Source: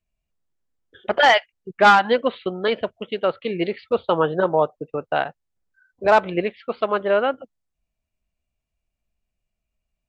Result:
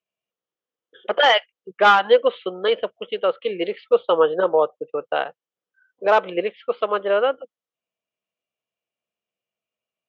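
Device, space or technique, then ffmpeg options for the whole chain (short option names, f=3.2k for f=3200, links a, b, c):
television speaker: -af "highpass=f=160:w=0.5412,highpass=f=160:w=1.3066,equalizer=f=160:t=q:w=4:g=-9,equalizer=f=240:t=q:w=4:g=-8,equalizer=f=490:t=q:w=4:g=9,equalizer=f=1.2k:t=q:w=4:g=5,equalizer=f=3.1k:t=q:w=4:g=7,equalizer=f=4.5k:t=q:w=4:g=-5,lowpass=f=6.8k:w=0.5412,lowpass=f=6.8k:w=1.3066,volume=-3dB"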